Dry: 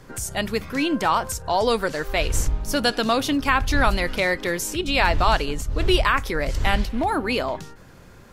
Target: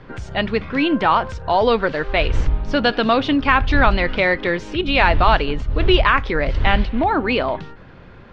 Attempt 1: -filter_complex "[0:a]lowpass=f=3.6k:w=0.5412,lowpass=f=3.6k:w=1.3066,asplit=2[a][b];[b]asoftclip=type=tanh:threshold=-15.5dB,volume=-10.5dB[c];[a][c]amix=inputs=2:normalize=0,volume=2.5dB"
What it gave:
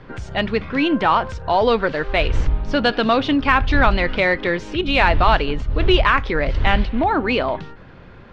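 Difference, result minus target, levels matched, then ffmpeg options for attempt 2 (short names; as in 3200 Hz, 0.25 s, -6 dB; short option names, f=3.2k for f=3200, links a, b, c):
soft clip: distortion +12 dB
-filter_complex "[0:a]lowpass=f=3.6k:w=0.5412,lowpass=f=3.6k:w=1.3066,asplit=2[a][b];[b]asoftclip=type=tanh:threshold=-6.5dB,volume=-10.5dB[c];[a][c]amix=inputs=2:normalize=0,volume=2.5dB"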